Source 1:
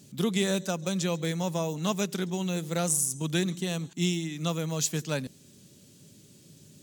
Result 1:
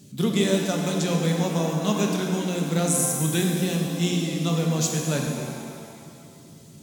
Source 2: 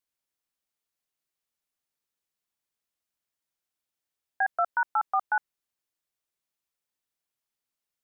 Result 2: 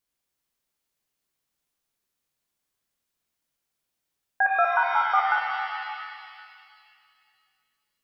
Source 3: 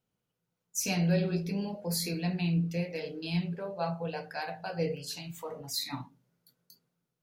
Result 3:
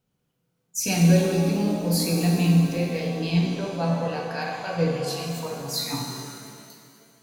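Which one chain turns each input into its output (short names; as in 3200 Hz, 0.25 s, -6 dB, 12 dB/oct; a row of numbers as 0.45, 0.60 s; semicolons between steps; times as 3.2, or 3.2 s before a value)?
low shelf 240 Hz +5 dB; shimmer reverb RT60 2.2 s, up +7 st, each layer -8 dB, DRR 1 dB; match loudness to -24 LUFS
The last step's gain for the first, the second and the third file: +1.0, +3.0, +4.5 dB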